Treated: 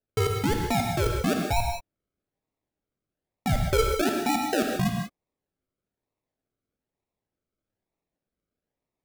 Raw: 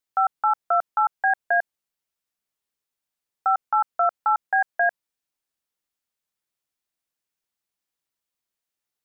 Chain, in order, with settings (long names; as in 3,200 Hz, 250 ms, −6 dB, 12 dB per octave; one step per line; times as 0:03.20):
0:03.49–0:04.01: low shelf with overshoot 780 Hz −8.5 dB, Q 3
sample-and-hold swept by an LFO 39×, swing 60% 1.1 Hz
reverb whose tail is shaped and stops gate 210 ms flat, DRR 1.5 dB
level −4.5 dB